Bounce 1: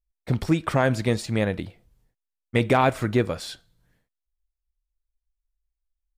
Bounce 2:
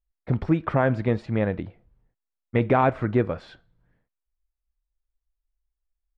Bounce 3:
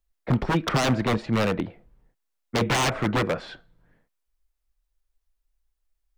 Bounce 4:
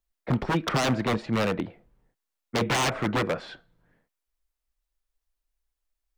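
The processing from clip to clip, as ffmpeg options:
ffmpeg -i in.wav -af "lowpass=1800" out.wav
ffmpeg -i in.wav -filter_complex "[0:a]equalizer=frequency=82:width_type=o:width=1.1:gain=-12,acrossover=split=150[link_01][link_02];[link_02]aeval=exprs='0.0596*(abs(mod(val(0)/0.0596+3,4)-2)-1)':channel_layout=same[link_03];[link_01][link_03]amix=inputs=2:normalize=0,volume=7dB" out.wav
ffmpeg -i in.wav -af "lowshelf=frequency=84:gain=-6.5,volume=-1.5dB" out.wav

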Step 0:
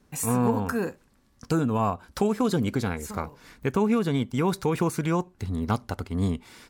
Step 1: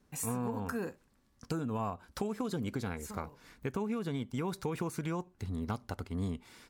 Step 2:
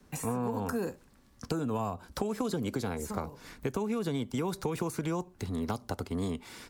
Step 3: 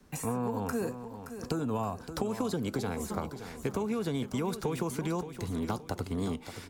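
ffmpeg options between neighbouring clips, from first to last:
ffmpeg -i in.wav -af "acompressor=threshold=-24dB:ratio=6,volume=-7dB" out.wav
ffmpeg -i in.wav -filter_complex "[0:a]acrossover=split=100|280|1100|3500[link_01][link_02][link_03][link_04][link_05];[link_01]acompressor=threshold=-55dB:ratio=4[link_06];[link_02]acompressor=threshold=-48dB:ratio=4[link_07];[link_03]acompressor=threshold=-41dB:ratio=4[link_08];[link_04]acompressor=threshold=-59dB:ratio=4[link_09];[link_05]acompressor=threshold=-52dB:ratio=4[link_10];[link_06][link_07][link_08][link_09][link_10]amix=inputs=5:normalize=0,volume=9dB" out.wav
ffmpeg -i in.wav -af "aecho=1:1:572|1144|1716|2288:0.299|0.116|0.0454|0.0177" out.wav

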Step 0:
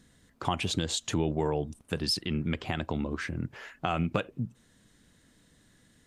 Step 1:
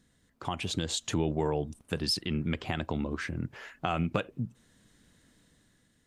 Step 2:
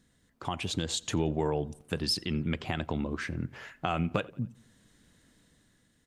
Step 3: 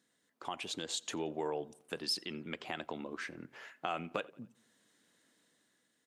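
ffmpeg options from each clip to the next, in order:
ffmpeg -i in.wav -af "dynaudnorm=framelen=190:gausssize=7:maxgain=6dB,volume=-6.5dB" out.wav
ffmpeg -i in.wav -filter_complex "[0:a]asplit=2[link_01][link_02];[link_02]adelay=88,lowpass=frequency=4100:poles=1,volume=-23dB,asplit=2[link_03][link_04];[link_04]adelay=88,lowpass=frequency=4100:poles=1,volume=0.52,asplit=2[link_05][link_06];[link_06]adelay=88,lowpass=frequency=4100:poles=1,volume=0.52[link_07];[link_01][link_03][link_05][link_07]amix=inputs=4:normalize=0" out.wav
ffmpeg -i in.wav -af "highpass=330,volume=-5dB" out.wav

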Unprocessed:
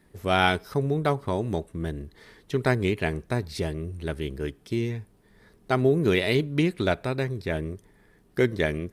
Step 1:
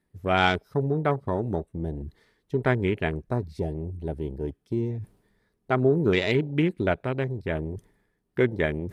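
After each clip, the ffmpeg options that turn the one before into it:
ffmpeg -i in.wav -af "afwtdn=0.0224,areverse,acompressor=mode=upward:threshold=-31dB:ratio=2.5,areverse" out.wav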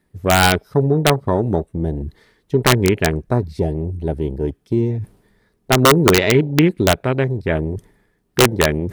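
ffmpeg -i in.wav -filter_complex "[0:a]acrossover=split=3800[link_01][link_02];[link_02]acompressor=threshold=-50dB:ratio=4:attack=1:release=60[link_03];[link_01][link_03]amix=inputs=2:normalize=0,apsyclip=9.5dB,aeval=exprs='(mod(1.5*val(0)+1,2)-1)/1.5':channel_layout=same" out.wav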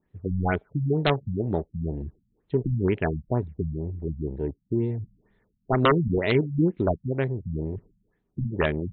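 ffmpeg -i in.wav -af "afftfilt=real='re*lt(b*sr/1024,220*pow(4300/220,0.5+0.5*sin(2*PI*2.1*pts/sr)))':imag='im*lt(b*sr/1024,220*pow(4300/220,0.5+0.5*sin(2*PI*2.1*pts/sr)))':win_size=1024:overlap=0.75,volume=-7.5dB" out.wav

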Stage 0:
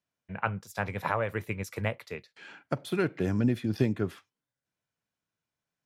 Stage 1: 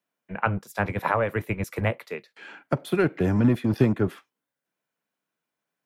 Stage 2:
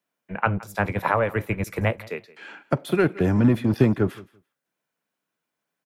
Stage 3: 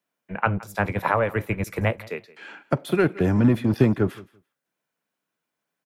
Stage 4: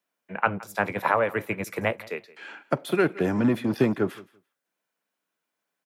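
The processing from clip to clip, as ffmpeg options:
ffmpeg -i in.wav -filter_complex "[0:a]equalizer=frequency=5500:width_type=o:width=1.6:gain=-6.5,acrossover=split=170|860[link_01][link_02][link_03];[link_01]acrusher=bits=5:mix=0:aa=0.5[link_04];[link_04][link_02][link_03]amix=inputs=3:normalize=0,volume=6dB" out.wav
ffmpeg -i in.wav -af "aecho=1:1:169|338:0.0891|0.0143,volume=2dB" out.wav
ffmpeg -i in.wav -af anull out.wav
ffmpeg -i in.wav -af "highpass=120,lowshelf=frequency=160:gain=-10" out.wav

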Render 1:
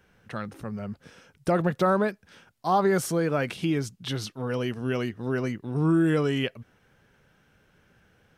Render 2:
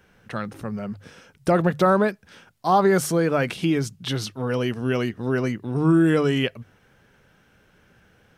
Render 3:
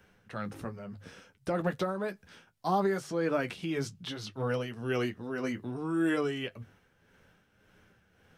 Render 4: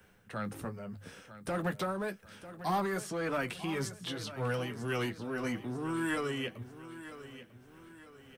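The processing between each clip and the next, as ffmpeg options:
ffmpeg -i in.wav -af "bandreject=frequency=50:width_type=h:width=6,bandreject=frequency=100:width_type=h:width=6,bandreject=frequency=150:width_type=h:width=6,volume=4.5dB" out.wav
ffmpeg -i in.wav -filter_complex "[0:a]acrossover=split=400|6300[link_01][link_02][link_03];[link_01]acompressor=threshold=-27dB:ratio=4[link_04];[link_02]acompressor=threshold=-24dB:ratio=4[link_05];[link_03]acompressor=threshold=-49dB:ratio=4[link_06];[link_04][link_05][link_06]amix=inputs=3:normalize=0,tremolo=f=1.8:d=0.56,flanger=delay=9.5:depth=2.4:regen=-40:speed=0.65:shape=sinusoidal" out.wav
ffmpeg -i in.wav -filter_complex "[0:a]acrossover=split=190|830[link_01][link_02][link_03];[link_02]asoftclip=type=hard:threshold=-35.5dB[link_04];[link_03]aexciter=amount=2.5:drive=3.5:freq=7800[link_05];[link_01][link_04][link_05]amix=inputs=3:normalize=0,aecho=1:1:946|1892|2838|3784:0.2|0.0838|0.0352|0.0148" out.wav

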